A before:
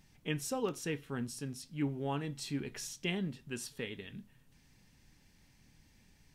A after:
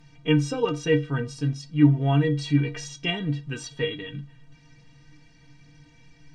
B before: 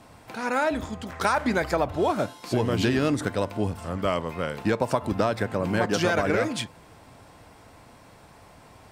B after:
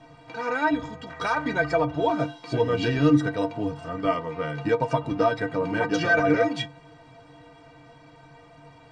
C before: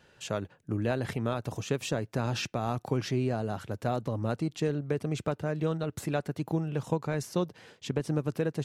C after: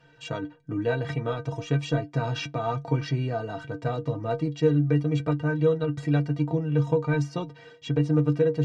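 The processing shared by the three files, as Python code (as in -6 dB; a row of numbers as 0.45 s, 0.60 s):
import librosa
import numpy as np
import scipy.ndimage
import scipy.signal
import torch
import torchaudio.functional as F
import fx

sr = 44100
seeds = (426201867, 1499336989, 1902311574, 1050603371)

y = scipy.ndimage.gaussian_filter1d(x, 1.6, mode='constant')
y = fx.stiff_resonator(y, sr, f0_hz=140.0, decay_s=0.24, stiffness=0.03)
y = y * 10.0 ** (-26 / 20.0) / np.sqrt(np.mean(np.square(y)))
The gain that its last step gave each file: +22.0 dB, +11.0 dB, +14.0 dB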